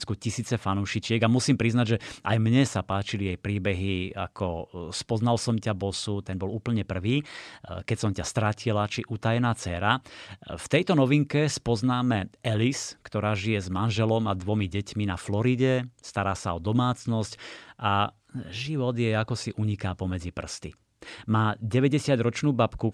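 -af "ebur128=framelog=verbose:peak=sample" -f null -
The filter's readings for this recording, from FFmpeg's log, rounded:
Integrated loudness:
  I:         -27.0 LUFS
  Threshold: -37.3 LUFS
Loudness range:
  LRA:         3.8 LU
  Threshold: -47.5 LUFS
  LRA low:   -29.3 LUFS
  LRA high:  -25.6 LUFS
Sample peak:
  Peak:       -7.1 dBFS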